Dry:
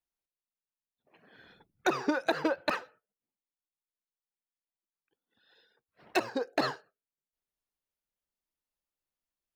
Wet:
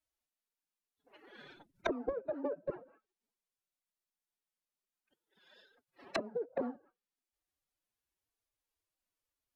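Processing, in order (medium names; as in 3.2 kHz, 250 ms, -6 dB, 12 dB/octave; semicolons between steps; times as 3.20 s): formant-preserving pitch shift +10.5 st; low-pass that closes with the level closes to 340 Hz, closed at -32.5 dBFS; trim +3.5 dB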